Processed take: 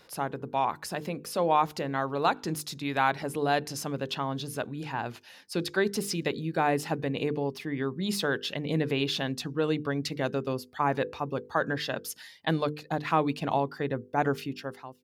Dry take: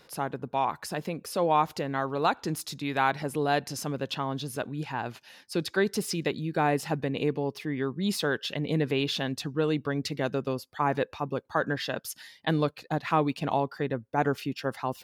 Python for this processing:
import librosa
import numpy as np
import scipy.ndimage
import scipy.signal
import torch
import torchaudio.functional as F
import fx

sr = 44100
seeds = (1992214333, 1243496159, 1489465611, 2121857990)

y = fx.fade_out_tail(x, sr, length_s=0.69)
y = fx.hum_notches(y, sr, base_hz=50, count=10)